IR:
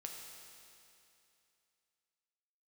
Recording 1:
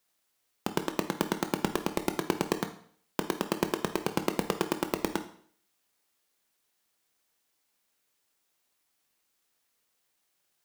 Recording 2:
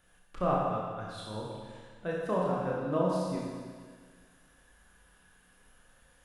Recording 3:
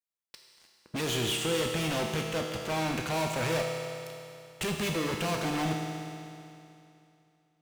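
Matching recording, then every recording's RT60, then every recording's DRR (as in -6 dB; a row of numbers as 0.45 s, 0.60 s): 3; 0.55 s, 1.7 s, 2.7 s; 7.5 dB, -4.5 dB, 0.5 dB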